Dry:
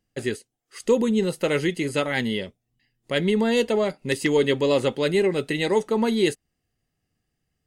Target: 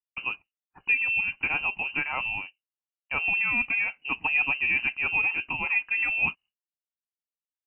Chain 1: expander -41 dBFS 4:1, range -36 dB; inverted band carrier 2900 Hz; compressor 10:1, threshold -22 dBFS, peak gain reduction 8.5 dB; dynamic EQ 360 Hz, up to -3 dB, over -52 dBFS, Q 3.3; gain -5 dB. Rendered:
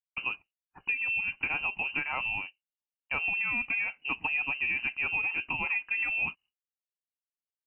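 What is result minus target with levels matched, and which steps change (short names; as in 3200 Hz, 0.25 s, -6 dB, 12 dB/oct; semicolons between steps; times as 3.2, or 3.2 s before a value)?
compressor: peak gain reduction +8.5 dB
remove: compressor 10:1, threshold -22 dBFS, peak gain reduction 8.5 dB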